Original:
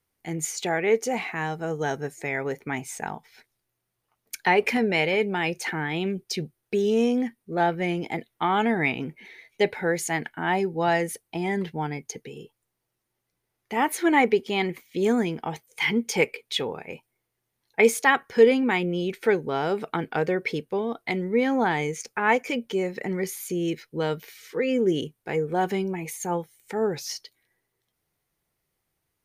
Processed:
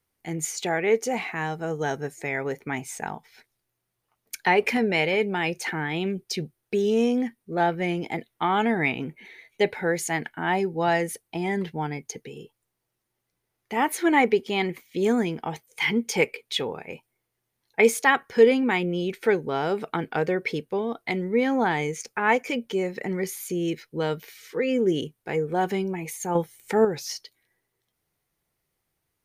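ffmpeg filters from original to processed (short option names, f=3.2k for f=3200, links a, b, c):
-filter_complex "[0:a]asettb=1/sr,asplit=3[a][b][c];[a]atrim=end=8.884[d];[b]atrim=start=8.88:end=9.69,asetpts=PTS-STARTPTS,afade=t=in:d=0.004:c=qsin,afade=t=out:st=0.806:d=0.004:c=qsin,equalizer=f=5.2k:w=7.8:g=-9[e];[c]atrim=start=9.686[f];[d][e]acrossfade=d=0.004:c1=hsin:c2=qsin[g];[g][f]acrossfade=d=0.004:c1=qsin:c2=hsin,asettb=1/sr,asplit=3[h][i][j];[h]atrim=end=26.354[k];[i]atrim=start=26.35:end=26.85,asetpts=PTS-STARTPTS,afade=t=in:d=0.004:c=qsin,afade=t=out:st=0.496:d=0.004:c=qsin,acontrast=72[l];[j]atrim=start=26.846[m];[k][l]acrossfade=d=0.004:c1=hsin:c2=qsin[n];[n][m]acrossfade=d=0.004:c1=qsin:c2=hsin"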